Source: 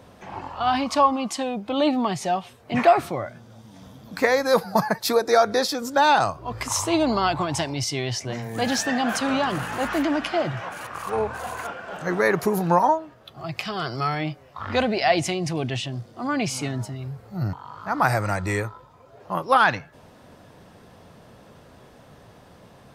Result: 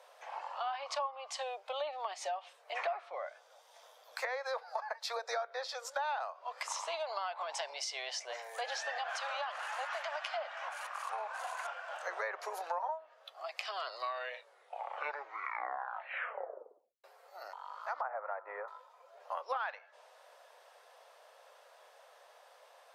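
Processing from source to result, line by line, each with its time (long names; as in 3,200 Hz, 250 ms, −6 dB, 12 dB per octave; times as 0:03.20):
0:04.16–0:07.43: high-pass filter 450 Hz
0:08.98–0:12.03: high-pass filter 590 Hz 24 dB per octave
0:13.67: tape stop 3.37 s
0:18.01–0:18.68: low-pass filter 1,400 Hz 24 dB per octave
whole clip: Butterworth high-pass 520 Hz 48 dB per octave; treble cut that deepens with the level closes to 3,000 Hz, closed at −19.5 dBFS; downward compressor 4 to 1, threshold −29 dBFS; level −6.5 dB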